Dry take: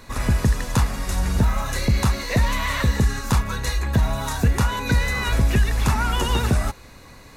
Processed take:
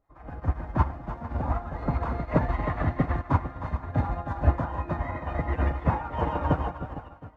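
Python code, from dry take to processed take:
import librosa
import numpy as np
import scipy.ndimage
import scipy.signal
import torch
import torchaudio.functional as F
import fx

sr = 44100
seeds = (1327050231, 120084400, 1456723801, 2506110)

y = scipy.signal.sosfilt(scipy.signal.butter(2, 1400.0, 'lowpass', fs=sr, output='sos'), x)
y = fx.peak_eq(y, sr, hz=690.0, db=9.5, octaves=1.9)
y = fx.hum_notches(y, sr, base_hz=60, count=6)
y = fx.dmg_noise_colour(y, sr, seeds[0], colour='brown', level_db=-46.0)
y = y + 10.0 ** (-8.0 / 20.0) * np.pad(y, (int(714 * sr / 1000.0), 0))[:len(y)]
y = fx.pitch_keep_formants(y, sr, semitones=4.0)
y = fx.harmonic_tremolo(y, sr, hz=8.0, depth_pct=70, crossover_hz=680.0)
y = fx.echo_multitap(y, sr, ms=(43, 58, 110, 314, 455, 484), db=(-9.0, -19.0, -18.5, -4.0, -7.5, -18.0))
y = fx.upward_expand(y, sr, threshold_db=-34.0, expansion=2.5)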